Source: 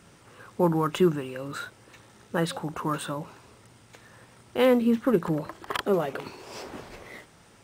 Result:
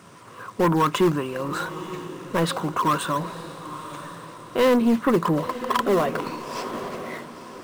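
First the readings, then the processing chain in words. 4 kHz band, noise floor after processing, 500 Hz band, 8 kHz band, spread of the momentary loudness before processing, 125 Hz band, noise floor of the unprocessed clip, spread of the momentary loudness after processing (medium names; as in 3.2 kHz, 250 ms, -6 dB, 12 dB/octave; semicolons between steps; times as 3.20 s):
+5.0 dB, -44 dBFS, +3.0 dB, +6.0 dB, 20 LU, +3.5 dB, -56 dBFS, 17 LU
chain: high-pass 110 Hz; peaking EQ 1 kHz +12 dB 0.48 oct; band-stop 860 Hz, Q 5.2; in parallel at -10 dB: decimation with a swept rate 11×, swing 160% 3.9 Hz; on the sum: saturation -17.5 dBFS, distortion -11 dB; echo that smears into a reverb 952 ms, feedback 43%, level -13 dB; trim +4 dB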